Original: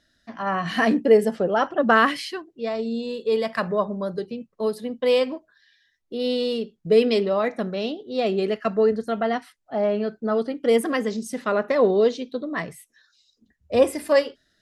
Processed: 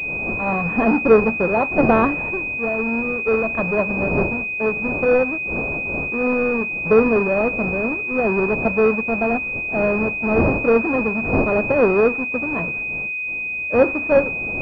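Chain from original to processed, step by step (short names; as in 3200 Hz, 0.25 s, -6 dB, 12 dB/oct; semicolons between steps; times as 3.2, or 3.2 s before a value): half-waves squared off; wind noise 540 Hz -30 dBFS; pulse-width modulation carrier 2500 Hz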